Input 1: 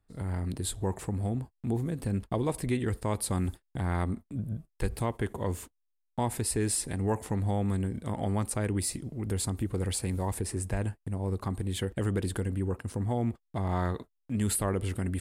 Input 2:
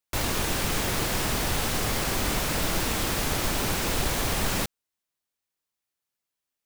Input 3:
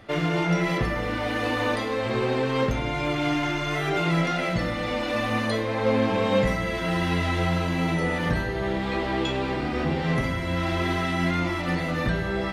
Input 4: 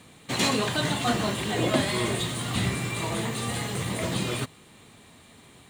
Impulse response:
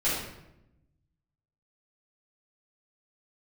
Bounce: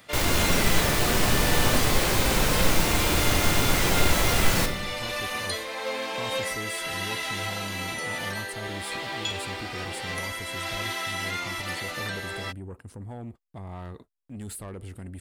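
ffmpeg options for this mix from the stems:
-filter_complex "[0:a]asoftclip=type=tanh:threshold=-26dB,volume=-6.5dB[a];[1:a]volume=0dB,asplit=2[b][c];[c]volume=-13.5dB[d];[2:a]highpass=460,crystalizer=i=5.5:c=0,volume=-7.5dB[e];[3:a]volume=-7.5dB[f];[4:a]atrim=start_sample=2205[g];[d][g]afir=irnorm=-1:irlink=0[h];[a][b][e][f][h]amix=inputs=5:normalize=0"

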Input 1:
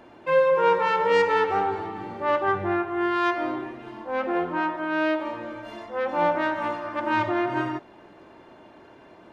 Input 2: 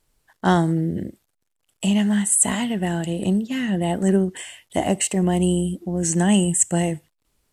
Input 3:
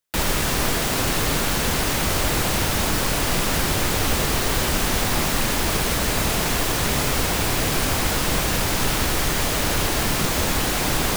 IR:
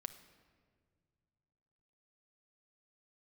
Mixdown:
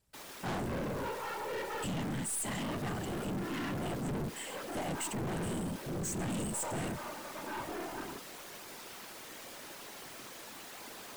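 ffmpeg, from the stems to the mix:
-filter_complex "[0:a]adelay=400,volume=-7.5dB[a];[1:a]volume=-1dB[b];[2:a]highpass=290,volume=-19.5dB,asplit=2[c][d];[d]volume=-9.5dB[e];[3:a]atrim=start_sample=2205[f];[e][f]afir=irnorm=-1:irlink=0[g];[a][b][c][g]amix=inputs=4:normalize=0,afftfilt=real='hypot(re,im)*cos(2*PI*random(0))':imag='hypot(re,im)*sin(2*PI*random(1))':win_size=512:overlap=0.75,aeval=exprs='(tanh(50.1*val(0)+0.2)-tanh(0.2))/50.1':c=same"

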